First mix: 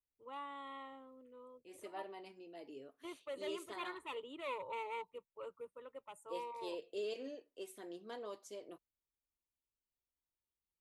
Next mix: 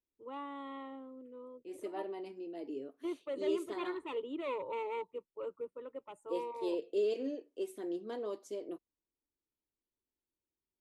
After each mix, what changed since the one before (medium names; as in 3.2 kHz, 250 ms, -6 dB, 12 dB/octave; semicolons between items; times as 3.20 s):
first voice: add distance through air 53 m; master: add peaking EQ 320 Hz +12 dB 1.5 oct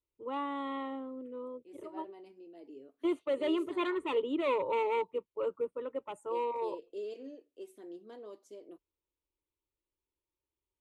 first voice +7.5 dB; second voice -8.5 dB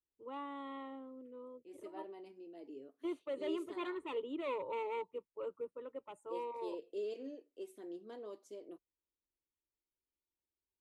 first voice -8.5 dB